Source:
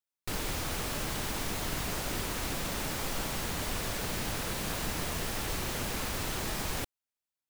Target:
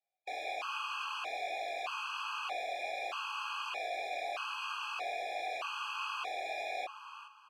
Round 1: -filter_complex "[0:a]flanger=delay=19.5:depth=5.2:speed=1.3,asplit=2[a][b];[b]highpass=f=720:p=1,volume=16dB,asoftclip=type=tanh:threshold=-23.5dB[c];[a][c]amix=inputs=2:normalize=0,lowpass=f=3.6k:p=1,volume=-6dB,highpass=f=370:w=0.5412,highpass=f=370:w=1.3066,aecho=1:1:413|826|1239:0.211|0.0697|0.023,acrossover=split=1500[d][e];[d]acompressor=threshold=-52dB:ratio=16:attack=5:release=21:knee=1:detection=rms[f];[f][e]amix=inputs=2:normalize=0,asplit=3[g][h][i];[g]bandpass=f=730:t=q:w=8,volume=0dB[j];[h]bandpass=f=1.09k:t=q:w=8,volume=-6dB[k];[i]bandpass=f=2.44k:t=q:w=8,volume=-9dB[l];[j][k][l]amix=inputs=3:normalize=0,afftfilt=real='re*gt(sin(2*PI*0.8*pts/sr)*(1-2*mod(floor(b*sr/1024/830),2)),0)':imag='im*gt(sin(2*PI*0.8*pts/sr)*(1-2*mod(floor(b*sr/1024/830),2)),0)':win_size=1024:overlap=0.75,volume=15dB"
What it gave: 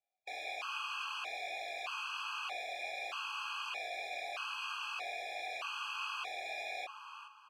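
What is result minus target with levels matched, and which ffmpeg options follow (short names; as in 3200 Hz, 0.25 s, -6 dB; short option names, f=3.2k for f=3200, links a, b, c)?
compressor: peak gain reduction +6.5 dB
-filter_complex "[0:a]flanger=delay=19.5:depth=5.2:speed=1.3,asplit=2[a][b];[b]highpass=f=720:p=1,volume=16dB,asoftclip=type=tanh:threshold=-23.5dB[c];[a][c]amix=inputs=2:normalize=0,lowpass=f=3.6k:p=1,volume=-6dB,highpass=f=370:w=0.5412,highpass=f=370:w=1.3066,aecho=1:1:413|826|1239:0.211|0.0697|0.023,acrossover=split=1500[d][e];[d]acompressor=threshold=-45dB:ratio=16:attack=5:release=21:knee=1:detection=rms[f];[f][e]amix=inputs=2:normalize=0,asplit=3[g][h][i];[g]bandpass=f=730:t=q:w=8,volume=0dB[j];[h]bandpass=f=1.09k:t=q:w=8,volume=-6dB[k];[i]bandpass=f=2.44k:t=q:w=8,volume=-9dB[l];[j][k][l]amix=inputs=3:normalize=0,afftfilt=real='re*gt(sin(2*PI*0.8*pts/sr)*(1-2*mod(floor(b*sr/1024/830),2)),0)':imag='im*gt(sin(2*PI*0.8*pts/sr)*(1-2*mod(floor(b*sr/1024/830),2)),0)':win_size=1024:overlap=0.75,volume=15dB"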